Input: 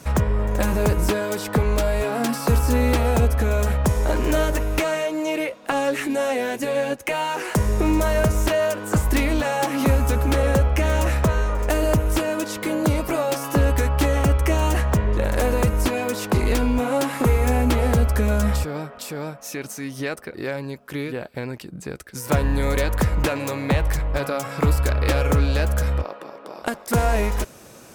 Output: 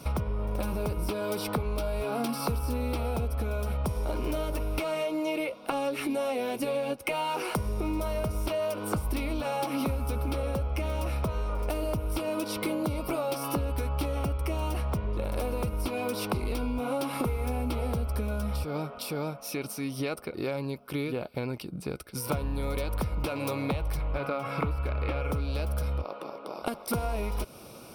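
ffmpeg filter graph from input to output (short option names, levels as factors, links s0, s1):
-filter_complex "[0:a]asettb=1/sr,asplit=3[s0][s1][s2];[s0]atrim=end=24.004[s3];[s1]atrim=start=24:end=25.31,asetpts=PTS-STARTPTS,afade=t=in:d=0.004:c=qsin,afade=t=out:st=1.306:d=0.004:c=qsin,acrossover=split=2900[s4][s5];[s5]acompressor=threshold=0.00398:ratio=4:attack=1:release=60[s6];[s4][s6]amix=inputs=2:normalize=0,equalizer=f=2000:t=o:w=1.4:g=5[s7];[s2]atrim=start=25.306[s8];[s3][s7]acrossfade=d=0.004:c1=hsin:c2=qsin[s9];[s9][s8]acrossfade=d=0.004:c1=qsin:c2=hsin,superequalizer=11b=0.282:15b=0.251,acompressor=threshold=0.0562:ratio=10,volume=0.841"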